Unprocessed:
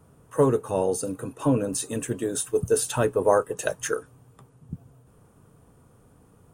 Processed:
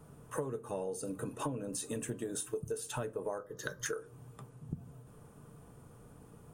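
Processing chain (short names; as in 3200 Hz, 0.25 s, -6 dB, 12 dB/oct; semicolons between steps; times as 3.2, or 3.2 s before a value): 3.38–3.86 fixed phaser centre 2600 Hz, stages 6; reverb RT60 0.35 s, pre-delay 5 ms, DRR 9.5 dB; compressor 20:1, threshold -34 dBFS, peak gain reduction 21.5 dB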